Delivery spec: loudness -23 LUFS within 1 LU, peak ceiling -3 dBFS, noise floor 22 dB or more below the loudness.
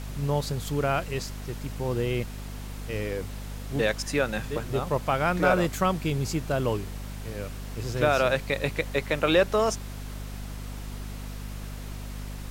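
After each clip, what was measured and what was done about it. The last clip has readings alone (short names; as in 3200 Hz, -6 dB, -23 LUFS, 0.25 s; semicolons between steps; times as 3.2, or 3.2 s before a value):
hum 50 Hz; harmonics up to 250 Hz; hum level -34 dBFS; noise floor -37 dBFS; noise floor target -50 dBFS; loudness -27.5 LUFS; peak -9.5 dBFS; loudness target -23.0 LUFS
-> notches 50/100/150/200/250 Hz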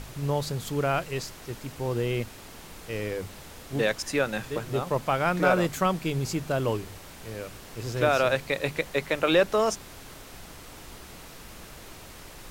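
hum none; noise floor -46 dBFS; noise floor target -50 dBFS
-> noise print and reduce 6 dB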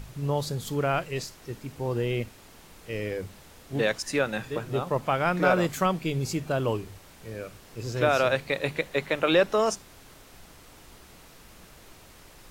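noise floor -52 dBFS; loudness -27.5 LUFS; peak -9.5 dBFS; loudness target -23.0 LUFS
-> gain +4.5 dB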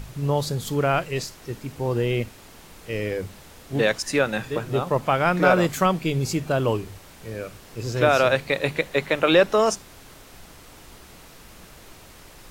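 loudness -23.0 LUFS; peak -5.0 dBFS; noise floor -47 dBFS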